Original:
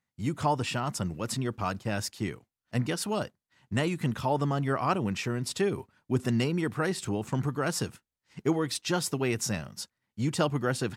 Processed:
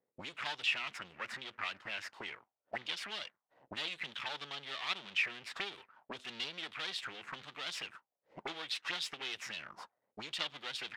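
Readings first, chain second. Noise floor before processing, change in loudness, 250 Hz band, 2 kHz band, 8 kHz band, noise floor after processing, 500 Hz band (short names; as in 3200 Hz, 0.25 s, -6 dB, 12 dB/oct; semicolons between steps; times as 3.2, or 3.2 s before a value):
under -85 dBFS, -9.0 dB, -25.5 dB, -1.5 dB, -16.0 dB, under -85 dBFS, -20.0 dB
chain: high shelf 4700 Hz -8 dB; in parallel at +1 dB: compressor, threshold -34 dBFS, peak gain reduction 12.5 dB; on the sum: added harmonics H 8 -24 dB, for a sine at -11 dBFS; half-wave rectifier; auto-wah 470–3500 Hz, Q 3.9, up, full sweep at -27.5 dBFS; gain +11.5 dB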